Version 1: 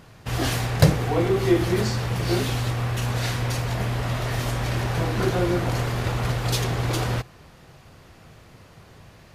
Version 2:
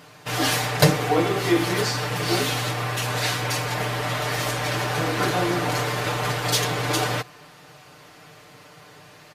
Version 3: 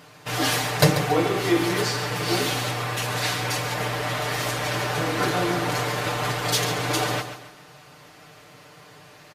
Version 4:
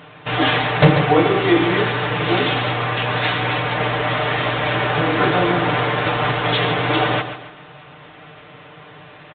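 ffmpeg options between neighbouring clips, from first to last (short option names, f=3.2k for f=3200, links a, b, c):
-af "highpass=f=430:p=1,aecho=1:1:6.7:0.82,volume=3.5dB"
-af "aecho=1:1:139|278|417|556:0.299|0.113|0.0431|0.0164,volume=-1dB"
-filter_complex "[0:a]asoftclip=type=hard:threshold=-12dB,asplit=2[a][b];[b]adelay=13,volume=-14dB[c];[a][c]amix=inputs=2:normalize=0,volume=7dB" -ar 8000 -c:a pcm_mulaw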